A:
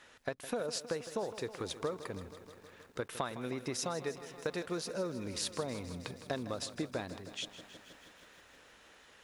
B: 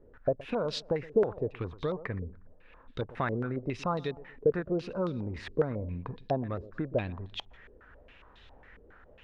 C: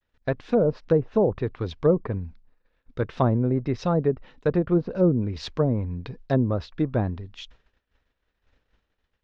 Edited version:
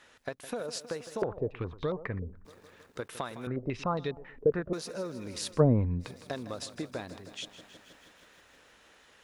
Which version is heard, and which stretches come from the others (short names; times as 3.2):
A
1.22–2.45 from B
3.47–4.73 from B
5.56–6.03 from C, crossfade 0.10 s